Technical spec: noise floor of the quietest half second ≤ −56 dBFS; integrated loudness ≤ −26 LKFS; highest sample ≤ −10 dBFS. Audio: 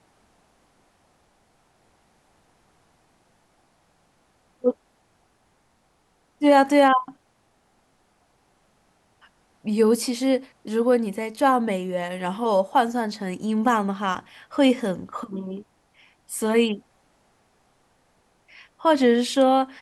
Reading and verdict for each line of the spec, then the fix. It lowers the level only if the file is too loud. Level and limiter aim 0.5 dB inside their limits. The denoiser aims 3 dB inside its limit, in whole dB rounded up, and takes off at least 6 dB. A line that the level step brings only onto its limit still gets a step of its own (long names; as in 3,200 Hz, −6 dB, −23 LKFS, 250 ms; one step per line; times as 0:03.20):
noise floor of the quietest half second −65 dBFS: in spec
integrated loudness −22.5 LKFS: out of spec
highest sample −5.5 dBFS: out of spec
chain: level −4 dB
brickwall limiter −10.5 dBFS